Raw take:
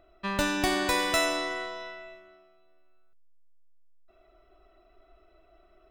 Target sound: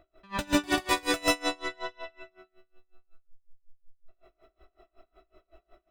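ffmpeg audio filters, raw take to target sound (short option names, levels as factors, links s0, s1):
-af "flanger=delay=15.5:depth=4.7:speed=0.39,aecho=1:1:84.55|139.9:0.447|1,aeval=exprs='val(0)*pow(10,-28*(0.5-0.5*cos(2*PI*5.4*n/s))/20)':c=same,volume=1.78"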